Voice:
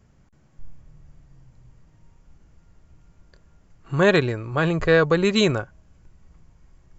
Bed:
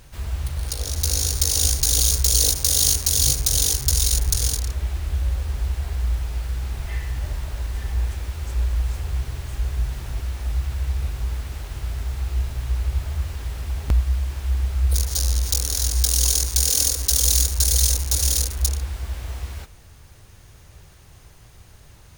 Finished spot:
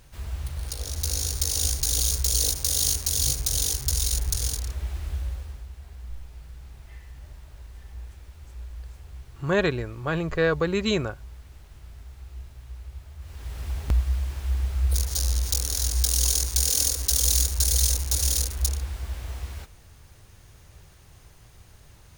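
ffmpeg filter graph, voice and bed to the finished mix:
ffmpeg -i stem1.wav -i stem2.wav -filter_complex "[0:a]adelay=5500,volume=-5.5dB[link_01];[1:a]volume=7.5dB,afade=type=out:start_time=5.08:duration=0.58:silence=0.281838,afade=type=in:start_time=13.19:duration=0.47:silence=0.223872[link_02];[link_01][link_02]amix=inputs=2:normalize=0" out.wav

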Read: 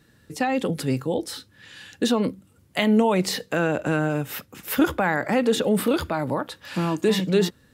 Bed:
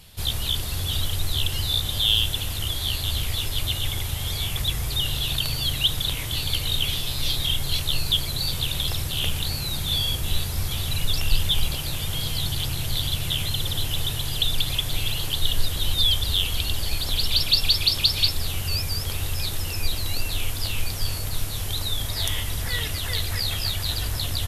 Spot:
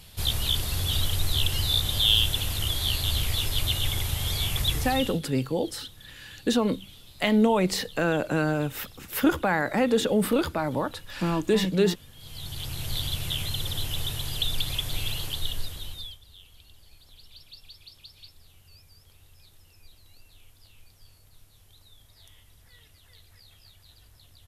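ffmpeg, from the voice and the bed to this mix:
ffmpeg -i stem1.wav -i stem2.wav -filter_complex "[0:a]adelay=4450,volume=-2dB[link_01];[1:a]volume=18dB,afade=type=out:start_time=4.73:duration=0.48:silence=0.0749894,afade=type=in:start_time=12.16:duration=0.78:silence=0.11885,afade=type=out:start_time=15.13:duration=1.05:silence=0.0630957[link_02];[link_01][link_02]amix=inputs=2:normalize=0" out.wav

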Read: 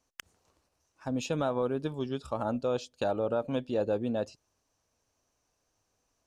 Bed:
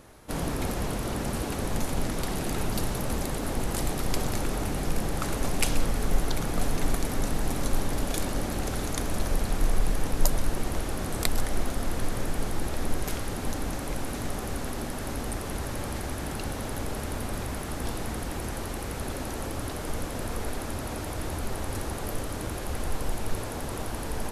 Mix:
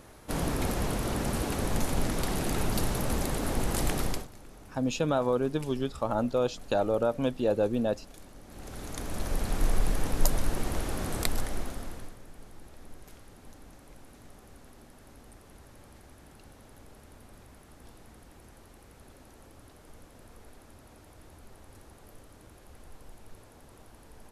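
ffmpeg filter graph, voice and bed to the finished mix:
ffmpeg -i stem1.wav -i stem2.wav -filter_complex "[0:a]adelay=3700,volume=3dB[link_01];[1:a]volume=19.5dB,afade=type=out:start_time=4.02:duration=0.25:silence=0.0891251,afade=type=in:start_time=8.45:duration=1.2:silence=0.105925,afade=type=out:start_time=11.13:duration=1.04:silence=0.11885[link_02];[link_01][link_02]amix=inputs=2:normalize=0" out.wav

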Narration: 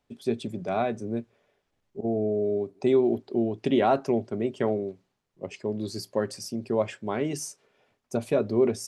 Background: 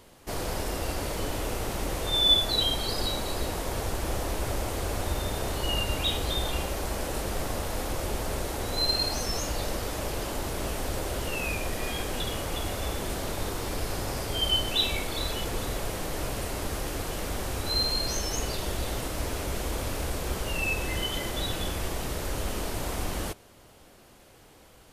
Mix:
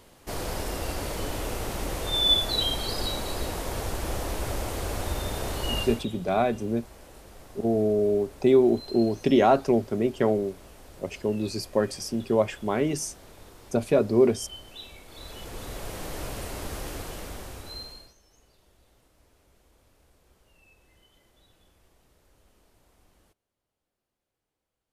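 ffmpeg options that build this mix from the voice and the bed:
ffmpeg -i stem1.wav -i stem2.wav -filter_complex "[0:a]adelay=5600,volume=3dB[link_01];[1:a]volume=14dB,afade=type=out:start_time=5.78:duration=0.28:silence=0.141254,afade=type=in:start_time=15.04:duration=1.02:silence=0.188365,afade=type=out:start_time=16.9:duration=1.24:silence=0.0375837[link_02];[link_01][link_02]amix=inputs=2:normalize=0" out.wav

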